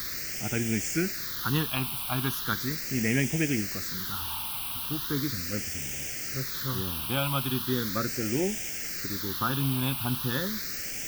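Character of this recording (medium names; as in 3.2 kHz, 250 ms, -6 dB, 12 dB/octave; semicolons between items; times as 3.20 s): a quantiser's noise floor 6-bit, dither triangular; phasing stages 6, 0.38 Hz, lowest notch 490–1100 Hz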